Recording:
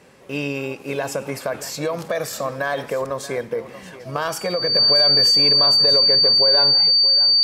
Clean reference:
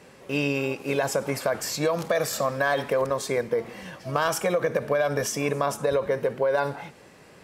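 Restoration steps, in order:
notch filter 4,600 Hz, Q 30
echo removal 630 ms −15.5 dB

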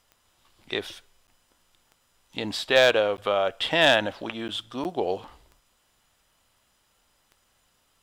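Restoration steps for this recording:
clipped peaks rebuilt −8 dBFS
click removal
repair the gap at 0:01.27/0:03.17/0:04.48/0:04.84, 9.3 ms

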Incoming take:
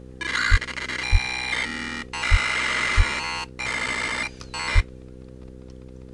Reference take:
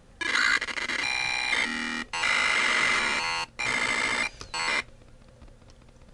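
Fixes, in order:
hum removal 63.8 Hz, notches 8
high-pass at the plosives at 0:00.50/0:01.11/0:02.30/0:02.96/0:04.74

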